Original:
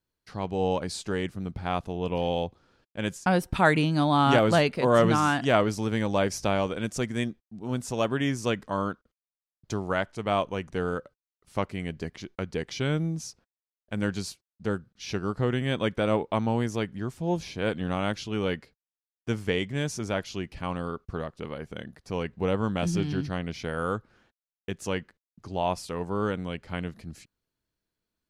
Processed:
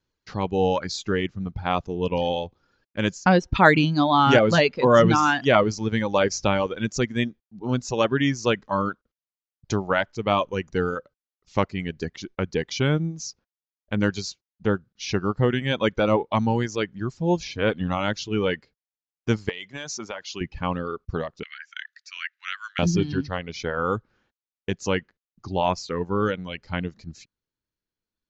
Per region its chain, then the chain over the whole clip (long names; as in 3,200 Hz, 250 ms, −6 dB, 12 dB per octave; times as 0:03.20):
0:19.49–0:20.41: high-pass filter 110 Hz + low-shelf EQ 410 Hz −10.5 dB + downward compressor 12 to 1, threshold −32 dBFS
0:21.43–0:22.79: Butterworth high-pass 1,400 Hz 48 dB per octave + parametric band 1,800 Hz +5 dB 0.82 octaves
whole clip: reverb reduction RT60 1.8 s; Butterworth low-pass 7,100 Hz 96 dB per octave; notch filter 680 Hz, Q 12; level +6.5 dB